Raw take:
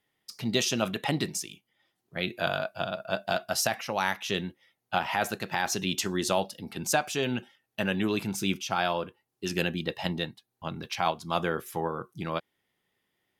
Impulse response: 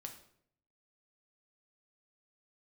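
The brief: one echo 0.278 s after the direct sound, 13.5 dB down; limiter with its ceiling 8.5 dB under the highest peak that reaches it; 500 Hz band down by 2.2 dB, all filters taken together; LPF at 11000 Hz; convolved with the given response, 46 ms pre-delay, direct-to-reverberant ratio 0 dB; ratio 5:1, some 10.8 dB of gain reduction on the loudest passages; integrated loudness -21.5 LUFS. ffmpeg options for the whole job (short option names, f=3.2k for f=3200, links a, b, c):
-filter_complex "[0:a]lowpass=11k,equalizer=f=500:t=o:g=-3,acompressor=threshold=-35dB:ratio=5,alimiter=level_in=2dB:limit=-24dB:level=0:latency=1,volume=-2dB,aecho=1:1:278:0.211,asplit=2[a][b];[1:a]atrim=start_sample=2205,adelay=46[c];[b][c]afir=irnorm=-1:irlink=0,volume=4dB[d];[a][d]amix=inputs=2:normalize=0,volume=16dB"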